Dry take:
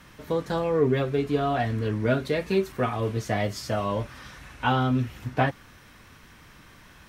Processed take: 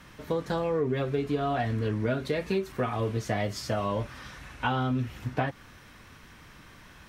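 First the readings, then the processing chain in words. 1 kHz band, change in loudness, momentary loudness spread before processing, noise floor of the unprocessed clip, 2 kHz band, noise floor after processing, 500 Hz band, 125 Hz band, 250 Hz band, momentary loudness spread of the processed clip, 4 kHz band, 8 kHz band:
-3.5 dB, -3.5 dB, 7 LU, -52 dBFS, -3.5 dB, -52 dBFS, -3.5 dB, -3.0 dB, -3.5 dB, 6 LU, -3.0 dB, -2.0 dB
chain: treble shelf 9.8 kHz -4 dB; compression, threshold -24 dBFS, peak gain reduction 7.5 dB

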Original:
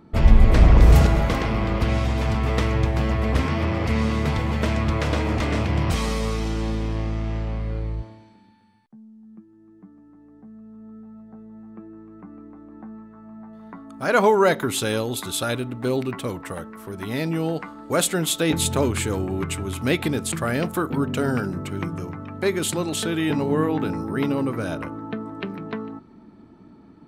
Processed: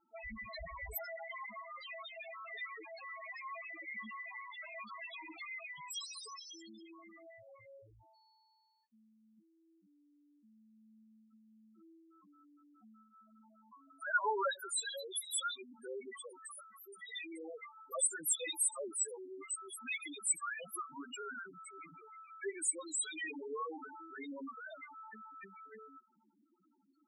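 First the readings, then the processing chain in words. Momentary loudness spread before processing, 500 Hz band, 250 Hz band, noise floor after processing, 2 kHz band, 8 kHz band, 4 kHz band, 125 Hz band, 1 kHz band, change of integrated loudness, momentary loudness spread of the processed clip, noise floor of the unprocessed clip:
23 LU, -21.5 dB, -28.5 dB, -73 dBFS, -12.5 dB, -6.0 dB, -14.5 dB, under -40 dB, -15.5 dB, -17.0 dB, 19 LU, -51 dBFS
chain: differentiator; loudest bins only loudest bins 2; trim +9 dB

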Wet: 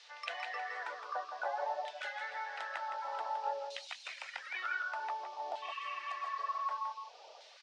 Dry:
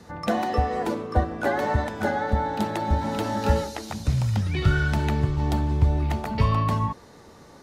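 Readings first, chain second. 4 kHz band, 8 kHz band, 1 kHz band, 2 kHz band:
-8.5 dB, -15.5 dB, -9.5 dB, -7.5 dB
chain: spectral replace 5.65–6.57 s, 850–3900 Hz after; LFO band-pass saw down 0.54 Hz 660–3400 Hz; reverb removal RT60 0.7 s; compression 2.5:1, threshold -44 dBFS, peak gain reduction 12 dB; Chebyshev band-pass 560–8800 Hz, order 3; band noise 2.3–5.6 kHz -68 dBFS; on a send: delay 165 ms -8 dB; on the sum: trim +5 dB

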